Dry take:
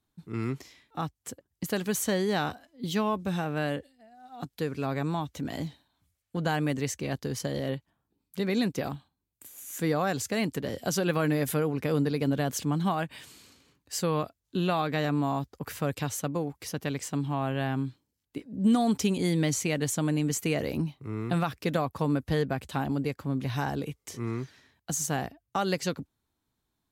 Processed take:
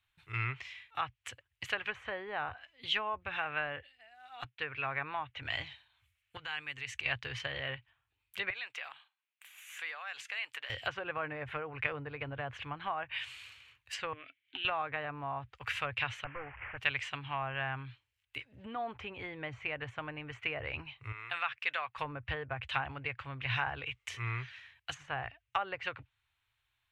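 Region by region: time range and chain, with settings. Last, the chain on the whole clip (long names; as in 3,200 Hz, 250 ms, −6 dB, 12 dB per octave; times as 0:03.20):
0:04.44–0:05.42: band-pass filter 110–3,100 Hz + noise gate −51 dBFS, range −10 dB
0:06.37–0:07.06: parametric band 630 Hz −12.5 dB 0.23 octaves + downward compressor 4 to 1, threshold −37 dBFS
0:08.50–0:10.70: high-pass filter 730 Hz + high-shelf EQ 4,700 Hz −8 dB + downward compressor 4 to 1, threshold −42 dBFS
0:14.13–0:14.65: downward compressor, threshold −37 dBFS + formant filter i + mid-hump overdrive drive 32 dB, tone 1,300 Hz, clips at −19 dBFS
0:16.24–0:16.78: linear delta modulator 16 kbit/s, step −43 dBFS + low-pass filter 2,000 Hz 24 dB per octave
0:21.12–0:21.98: high-pass filter 1,200 Hz 6 dB per octave + high-shelf EQ 3,400 Hz −11.5 dB
whole clip: low-shelf EQ 270 Hz −8.5 dB; treble cut that deepens with the level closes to 890 Hz, closed at −26.5 dBFS; drawn EQ curve 120 Hz 0 dB, 170 Hz −27 dB, 250 Hz −25 dB, 2,700 Hz +9 dB, 4,900 Hz −11 dB; level +5 dB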